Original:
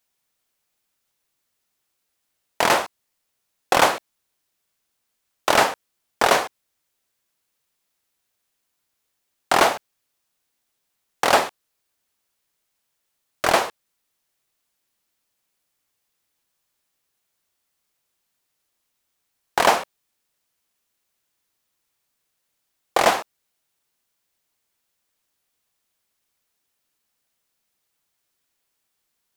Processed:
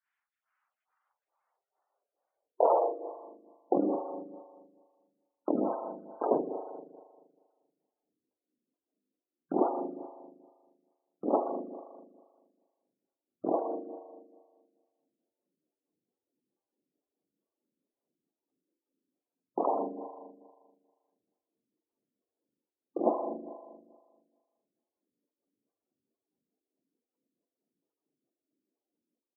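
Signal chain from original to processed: level rider gain up to 7 dB; spring tank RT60 1.6 s, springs 39 ms, chirp 40 ms, DRR 4 dB; band-pass sweep 1.6 kHz -> 280 Hz, 0.16–3.91 s; spectral gate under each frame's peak -15 dB strong; on a send: feedback delay 128 ms, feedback 50%, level -18.5 dB; on the sum: lamp-driven phase shifter 2.3 Hz; trim +3 dB

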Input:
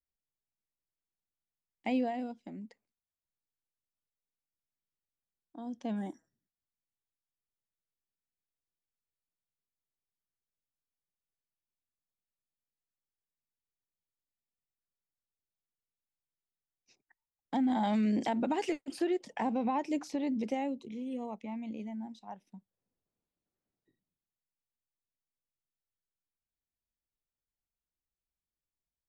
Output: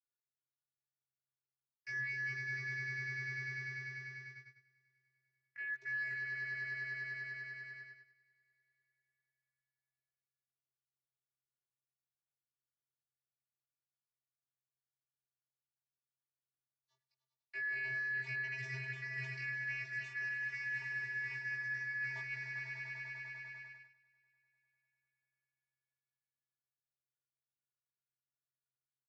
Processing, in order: four frequency bands reordered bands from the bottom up 3142; vocoder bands 32, square 131 Hz; on a send: echo with a slow build-up 99 ms, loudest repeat 5, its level -10.5 dB; on the sum: gate -59 dBFS, range -19 dB; reverse; compression 10:1, threshold -46 dBFS, peak gain reduction 19.5 dB; reverse; doubling 17 ms -2.5 dB; trim +4.5 dB

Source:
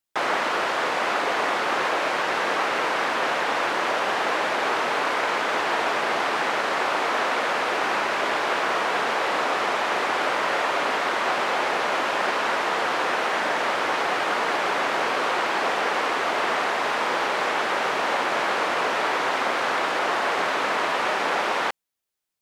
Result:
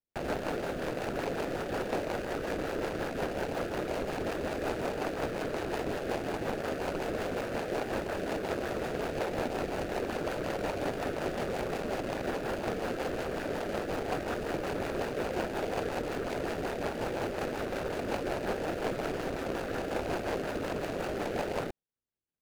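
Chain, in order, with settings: median filter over 41 samples; rotary cabinet horn 5.5 Hz

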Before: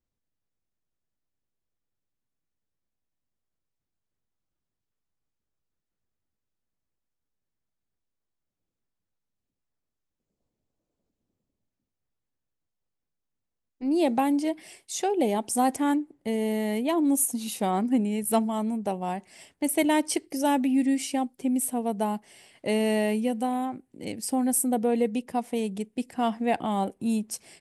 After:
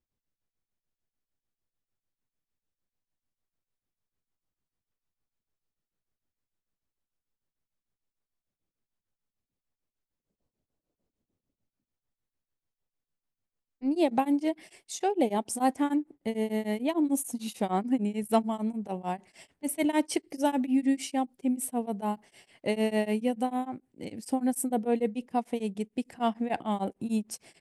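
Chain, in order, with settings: treble shelf 6.5 kHz -6 dB; tremolo of two beating tones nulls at 6.7 Hz

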